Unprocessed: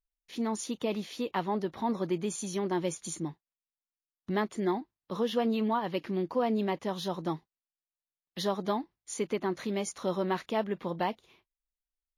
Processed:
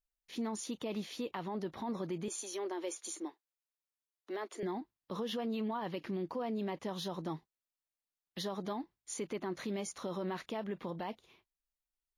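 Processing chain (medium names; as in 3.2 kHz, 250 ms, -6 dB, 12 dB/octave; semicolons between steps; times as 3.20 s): 2.28–4.63 s: steep high-pass 310 Hz 36 dB/octave; peak limiter -27.5 dBFS, peak gain reduction 10.5 dB; trim -2.5 dB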